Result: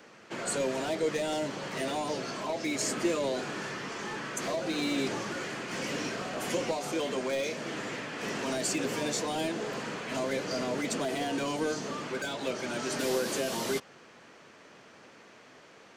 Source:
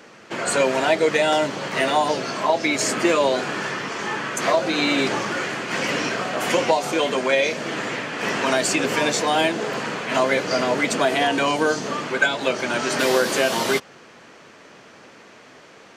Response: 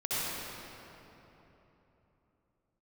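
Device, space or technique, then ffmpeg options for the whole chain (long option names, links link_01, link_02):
one-band saturation: -filter_complex "[0:a]acrossover=split=500|4600[link_01][link_02][link_03];[link_02]asoftclip=type=tanh:threshold=-28.5dB[link_04];[link_01][link_04][link_03]amix=inputs=3:normalize=0,volume=-7.5dB"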